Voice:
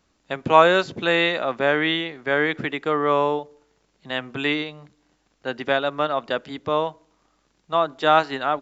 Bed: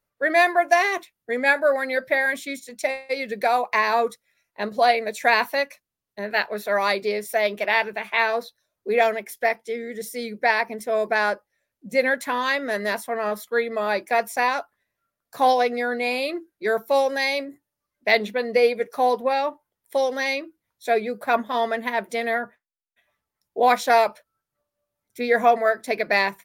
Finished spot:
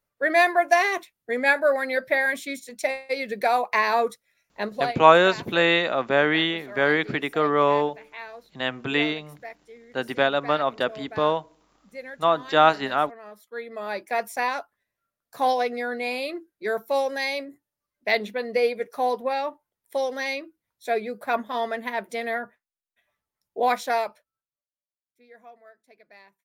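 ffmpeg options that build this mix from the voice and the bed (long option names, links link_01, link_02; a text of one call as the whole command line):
ffmpeg -i stem1.wav -i stem2.wav -filter_complex "[0:a]adelay=4500,volume=0dB[link_01];[1:a]volume=13dB,afade=type=out:start_time=4.63:duration=0.33:silence=0.141254,afade=type=in:start_time=13.38:duration=0.86:silence=0.199526,afade=type=out:start_time=23.63:duration=1.01:silence=0.0446684[link_02];[link_01][link_02]amix=inputs=2:normalize=0" out.wav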